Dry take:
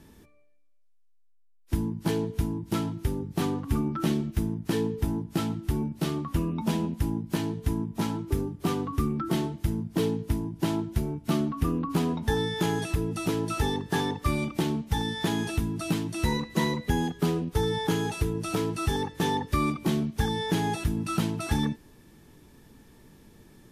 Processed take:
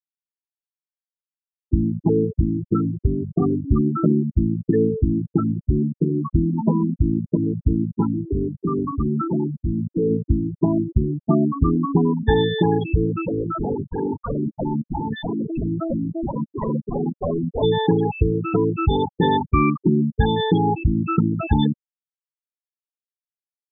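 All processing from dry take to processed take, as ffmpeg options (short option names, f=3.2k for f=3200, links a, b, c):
-filter_complex "[0:a]asettb=1/sr,asplit=3[a][b][c];[a]atrim=end=8.134[d];[b]atrim=start=8.13:end=10.1,asetpts=PTS-STARTPTS,afade=t=in:d=0.004:c=qsin,afade=t=out:st=1.966:d=0.004:c=qsin,volume=26dB,asoftclip=hard,volume=-26dB,acrusher=bits=8:mix=0:aa=0.5[e];[c]atrim=start=10.096[f];[d][e]acrossfade=d=0.004:c1=hsin:c2=qsin[g];[g][f]acrossfade=d=0.004:c1=qsin:c2=hsin,asettb=1/sr,asplit=3[h][i][j];[h]atrim=end=13.234[k];[i]atrim=start=13.23:end=17.63,asetpts=PTS-STARTPTS,afade=t=in:d=0.004:c=qsin,afade=t=out:st=4.396:d=0.004:c=qsin,lowpass=f=3.1k:p=1,aeval=exprs='0.0501*(abs(mod(val(0)/0.0501+3,4)-2)-1)':c=same,asplit=2[l][m];[m]adelay=324,lowpass=f=1.7k:p=1,volume=-8dB,asplit=2[n][o];[o]adelay=324,lowpass=f=1.7k:p=1,volume=0.46,asplit=2[p][q];[q]adelay=324,lowpass=f=1.7k:p=1,volume=0.46,asplit=2[r][s];[s]adelay=324,lowpass=f=1.7k:p=1,volume=0.46,asplit=2[t][u];[u]adelay=324,lowpass=f=1.7k:p=1,volume=0.46[v];[l][n][p][r][t][v]amix=inputs=6:normalize=0,atrim=end_sample=194040[w];[j]atrim=start=17.626[x];[k][w]acrossfade=d=0.004:c1=hsin:c2=qsin[y];[y][x]acrossfade=d=0.004:c1=qsin:c2=hsin,afftfilt=real='re*gte(hypot(re,im),0.1)':imag='im*gte(hypot(re,im),0.1)':win_size=1024:overlap=0.75,equalizer=f=560:w=2.9:g=7,volume=8.5dB"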